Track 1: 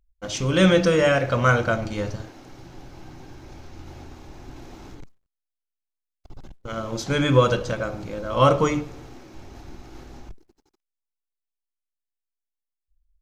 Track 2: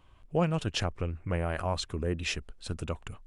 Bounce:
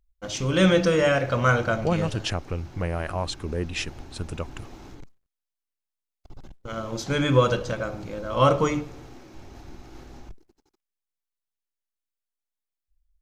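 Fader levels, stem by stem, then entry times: -2.0 dB, +2.5 dB; 0.00 s, 1.50 s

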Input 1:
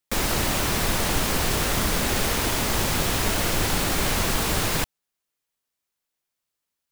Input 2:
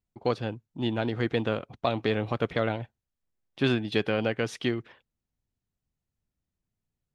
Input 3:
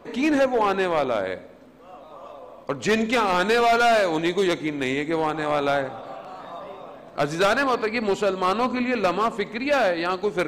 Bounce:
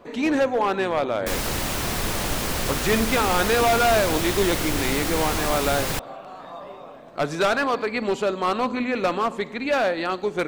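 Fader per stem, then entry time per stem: -2.5 dB, -12.0 dB, -1.0 dB; 1.15 s, 0.00 s, 0.00 s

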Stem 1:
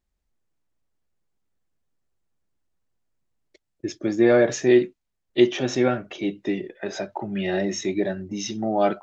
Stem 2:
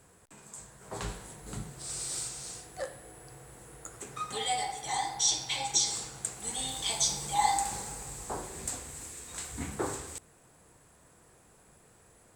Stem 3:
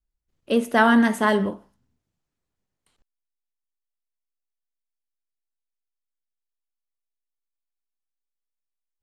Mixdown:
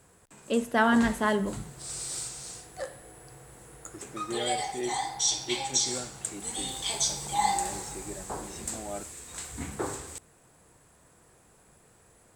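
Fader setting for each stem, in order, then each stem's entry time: -17.5 dB, +0.5 dB, -6.0 dB; 0.10 s, 0.00 s, 0.00 s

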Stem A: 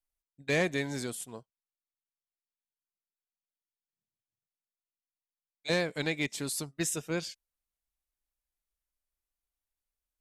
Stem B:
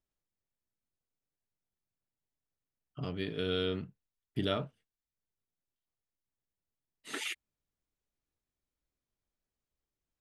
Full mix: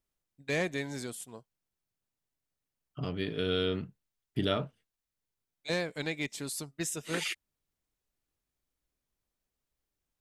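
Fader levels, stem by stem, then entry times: -3.0 dB, +2.5 dB; 0.00 s, 0.00 s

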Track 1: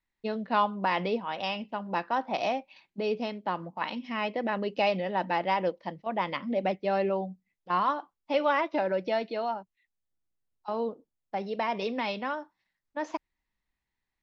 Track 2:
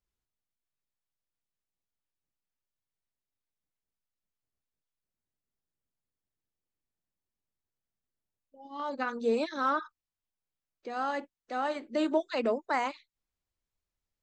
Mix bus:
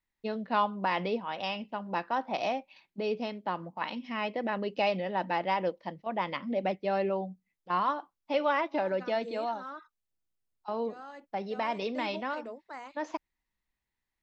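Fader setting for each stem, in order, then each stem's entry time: -2.0 dB, -14.0 dB; 0.00 s, 0.00 s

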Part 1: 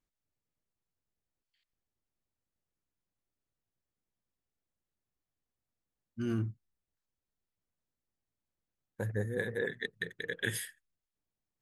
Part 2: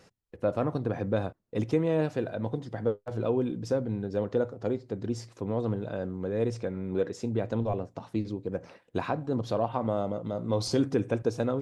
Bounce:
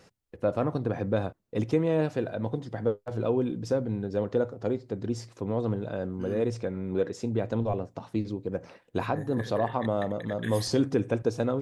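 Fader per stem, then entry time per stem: -5.5 dB, +1.0 dB; 0.00 s, 0.00 s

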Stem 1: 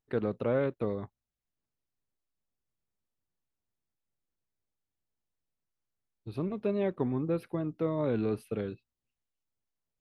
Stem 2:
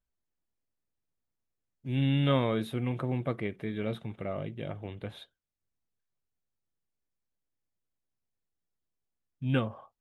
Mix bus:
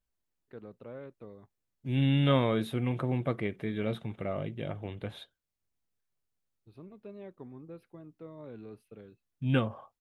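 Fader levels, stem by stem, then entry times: -16.0 dB, +1.0 dB; 0.40 s, 0.00 s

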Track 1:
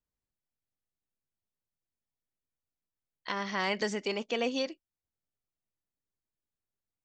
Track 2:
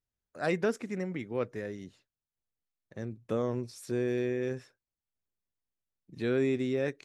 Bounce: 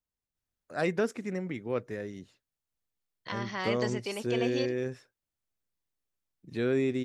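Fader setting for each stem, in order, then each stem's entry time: -3.0 dB, +0.5 dB; 0.00 s, 0.35 s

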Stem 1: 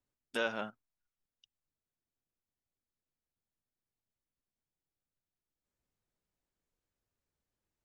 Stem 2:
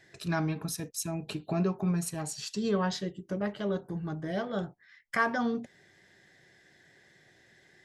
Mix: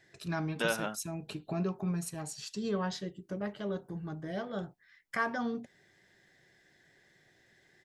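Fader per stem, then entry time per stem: +2.5 dB, -4.5 dB; 0.25 s, 0.00 s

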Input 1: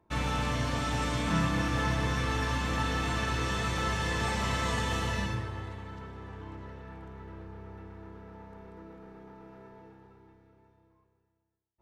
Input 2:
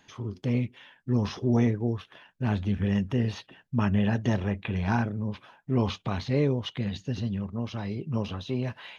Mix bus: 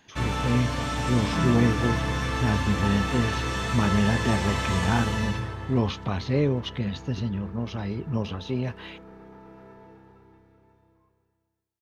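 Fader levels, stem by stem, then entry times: +2.5 dB, +1.5 dB; 0.05 s, 0.00 s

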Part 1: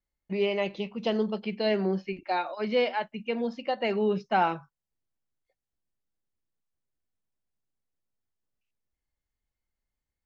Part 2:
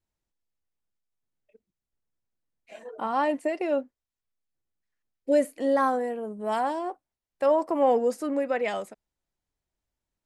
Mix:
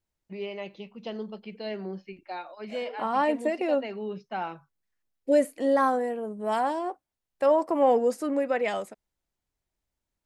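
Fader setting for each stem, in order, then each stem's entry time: -8.5 dB, +0.5 dB; 0.00 s, 0.00 s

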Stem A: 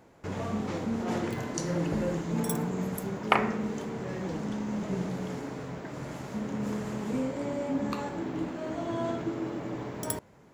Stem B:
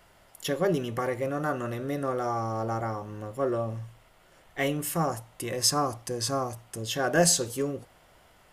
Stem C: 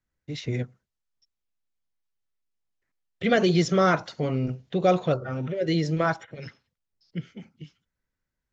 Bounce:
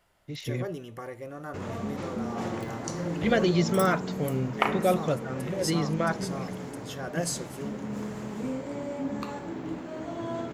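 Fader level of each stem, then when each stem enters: -2.0 dB, -10.0 dB, -3.5 dB; 1.30 s, 0.00 s, 0.00 s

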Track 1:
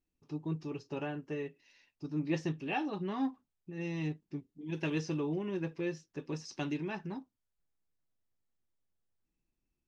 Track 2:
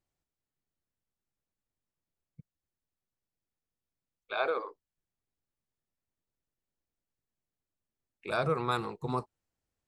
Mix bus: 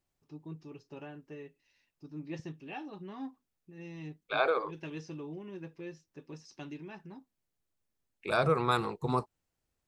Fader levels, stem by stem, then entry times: -8.0 dB, +2.5 dB; 0.00 s, 0.00 s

